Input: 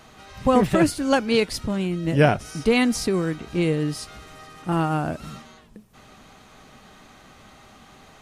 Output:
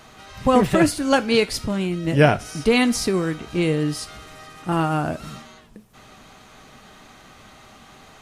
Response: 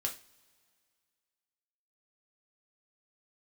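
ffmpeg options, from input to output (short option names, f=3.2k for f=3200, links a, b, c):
-filter_complex "[0:a]asplit=2[a][b];[1:a]atrim=start_sample=2205,lowshelf=f=480:g=-10[c];[b][c]afir=irnorm=-1:irlink=0,volume=-7dB[d];[a][d]amix=inputs=2:normalize=0"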